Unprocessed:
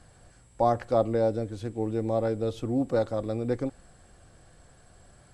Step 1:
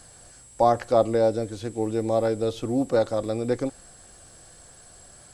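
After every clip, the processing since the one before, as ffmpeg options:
-filter_complex "[0:a]bass=f=250:g=-5,treble=f=4k:g=13,acrossover=split=3800[a][b];[b]acompressor=threshold=-51dB:ratio=4:attack=1:release=60[c];[a][c]amix=inputs=2:normalize=0,volume=4.5dB"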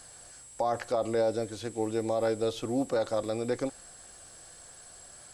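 -af "lowshelf=f=400:g=-8,alimiter=limit=-19dB:level=0:latency=1:release=34"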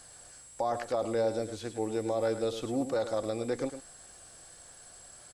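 -af "aecho=1:1:106:0.299,volume=-2dB"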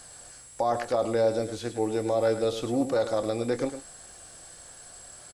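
-filter_complex "[0:a]asplit=2[a][b];[b]adelay=25,volume=-13dB[c];[a][c]amix=inputs=2:normalize=0,volume=4.5dB"

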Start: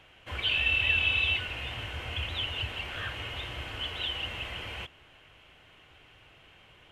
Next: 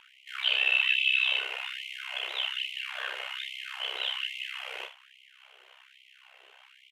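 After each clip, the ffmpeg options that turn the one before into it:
-af "tremolo=f=65:d=0.919,aecho=1:1:32|75:0.501|0.282,afftfilt=real='re*gte(b*sr/1024,340*pow(2000/340,0.5+0.5*sin(2*PI*1.2*pts/sr)))':imag='im*gte(b*sr/1024,340*pow(2000/340,0.5+0.5*sin(2*PI*1.2*pts/sr)))':win_size=1024:overlap=0.75,volume=4.5dB"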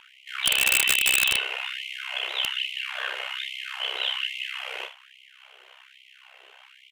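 -af "aeval=exprs='(mod(7.08*val(0)+1,2)-1)/7.08':c=same,volume=4.5dB"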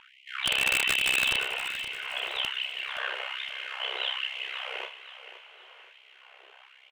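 -af "lowpass=f=2.5k:p=1,aecho=1:1:520|1040|1560|2080:0.251|0.098|0.0382|0.0149"

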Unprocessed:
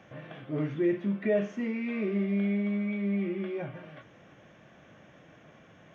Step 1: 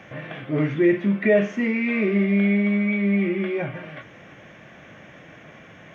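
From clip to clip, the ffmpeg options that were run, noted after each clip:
-af "equalizer=f=2.1k:w=2:g=6.5,volume=8.5dB"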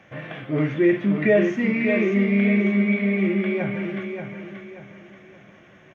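-af "agate=range=-7dB:threshold=-39dB:ratio=16:detection=peak,aecho=1:1:582|1164|1746|2328:0.473|0.17|0.0613|0.0221"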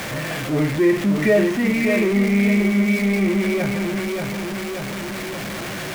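-af "aeval=exprs='val(0)+0.5*0.0668*sgn(val(0))':c=same"

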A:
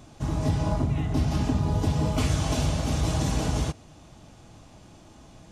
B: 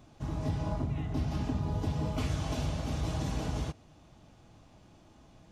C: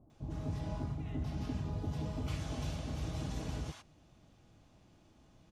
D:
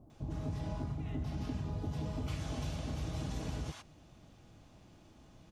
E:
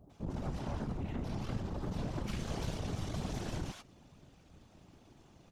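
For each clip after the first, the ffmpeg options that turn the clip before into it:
-af "equalizer=f=8.8k:t=o:w=1.2:g=-6.5,volume=-7.5dB"
-filter_complex "[0:a]acrossover=split=860[a][b];[b]adelay=100[c];[a][c]amix=inputs=2:normalize=0,volume=-5.5dB"
-af "acompressor=threshold=-42dB:ratio=2,volume=4.5dB"
-af "aeval=exprs='0.0531*(cos(1*acos(clip(val(0)/0.0531,-1,1)))-cos(1*PI/2))+0.00841*(cos(8*acos(clip(val(0)/0.0531,-1,1)))-cos(8*PI/2))':c=same,afftfilt=real='hypot(re,im)*cos(2*PI*random(0))':imag='hypot(re,im)*sin(2*PI*random(1))':win_size=512:overlap=0.75,volume=5dB"

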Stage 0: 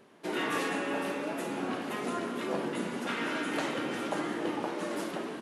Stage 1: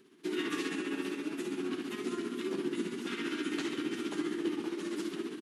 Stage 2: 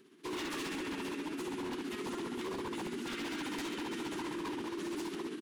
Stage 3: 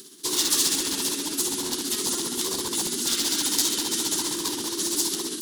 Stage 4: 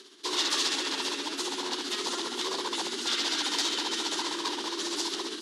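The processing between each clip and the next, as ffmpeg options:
-filter_complex "[0:a]tremolo=f=15:d=0.49,firequalizer=gain_entry='entry(120,0);entry(360,12);entry(540,-13);entry(1200,0);entry(3200,7)':delay=0.05:min_phase=1,acrossover=split=8700[a][b];[b]acompressor=threshold=-54dB:ratio=4:attack=1:release=60[c];[a][c]amix=inputs=2:normalize=0,volume=-6dB"
-af "aeval=exprs='0.0211*(abs(mod(val(0)/0.0211+3,4)-2)-1)':c=same"
-af "areverse,acompressor=mode=upward:threshold=-44dB:ratio=2.5,areverse,aexciter=amount=9.2:drive=6:freq=3.6k,volume=5.5dB"
-af "highpass=480,lowpass=3.4k,volume=3dB"

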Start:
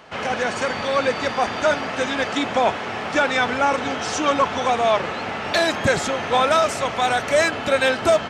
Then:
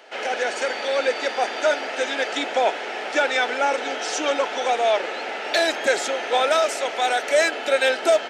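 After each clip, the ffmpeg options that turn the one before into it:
-af "highpass=f=340:w=0.5412,highpass=f=340:w=1.3066,equalizer=f=1.1k:w=4.7:g=-13"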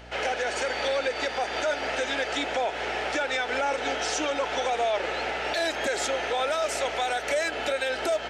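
-af "aeval=exprs='val(0)+0.00447*(sin(2*PI*60*n/s)+sin(2*PI*2*60*n/s)/2+sin(2*PI*3*60*n/s)/3+sin(2*PI*4*60*n/s)/4+sin(2*PI*5*60*n/s)/5)':c=same,alimiter=limit=-18dB:level=0:latency=1:release=143"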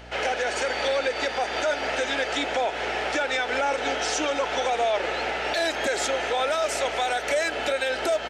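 -af "aecho=1:1:229:0.0891,volume=2dB"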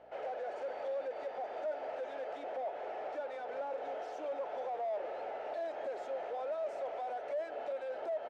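-af "asoftclip=type=hard:threshold=-27dB,bandpass=f=610:t=q:w=2.4:csg=0,volume=-5.5dB"

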